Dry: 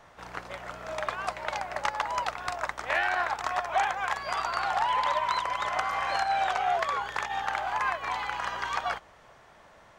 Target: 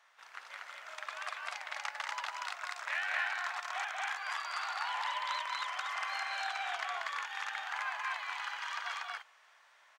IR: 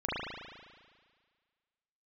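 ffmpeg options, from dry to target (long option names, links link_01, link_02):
-af "highpass=1500,highshelf=frequency=6500:gain=-4.5,aecho=1:1:186.6|239.1:0.631|0.891,volume=-5.5dB"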